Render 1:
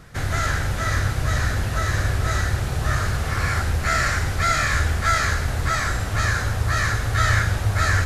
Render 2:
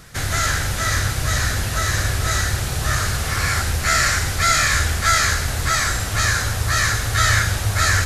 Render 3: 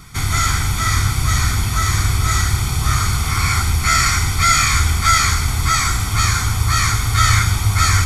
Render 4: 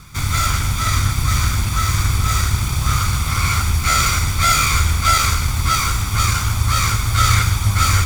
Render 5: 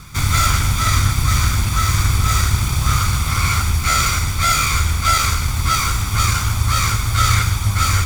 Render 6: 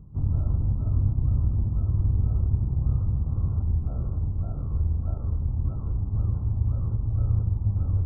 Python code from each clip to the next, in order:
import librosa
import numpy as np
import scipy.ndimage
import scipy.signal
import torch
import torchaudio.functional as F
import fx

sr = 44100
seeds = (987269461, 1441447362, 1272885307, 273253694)

y1 = fx.high_shelf(x, sr, hz=2700.0, db=11.5)
y2 = y1 + 0.83 * np.pad(y1, (int(0.9 * sr / 1000.0), 0))[:len(y1)]
y3 = fx.lower_of_two(y2, sr, delay_ms=0.83)
y4 = fx.rider(y3, sr, range_db=10, speed_s=2.0)
y5 = scipy.ndimage.gaussian_filter1d(y4, 15.0, mode='constant')
y5 = F.gain(torch.from_numpy(y5), -6.0).numpy()